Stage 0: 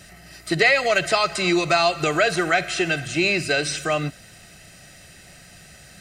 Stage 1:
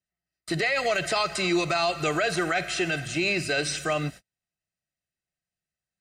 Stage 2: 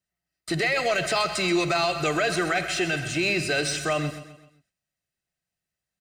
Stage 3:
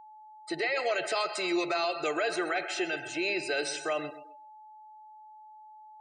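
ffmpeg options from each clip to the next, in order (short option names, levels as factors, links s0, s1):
-af "agate=range=0.00708:threshold=0.0158:ratio=16:detection=peak,alimiter=limit=0.224:level=0:latency=1:release=17,volume=0.708"
-filter_complex "[0:a]asplit=2[s0][s1];[s1]asoftclip=type=tanh:threshold=0.02,volume=0.447[s2];[s0][s2]amix=inputs=2:normalize=0,aecho=1:1:129|258|387|516:0.237|0.104|0.0459|0.0202"
-af "lowshelf=f=260:t=q:w=1.5:g=-12,afftdn=nr=28:nf=-38,aeval=exprs='val(0)+0.00794*sin(2*PI*860*n/s)':c=same,volume=0.473"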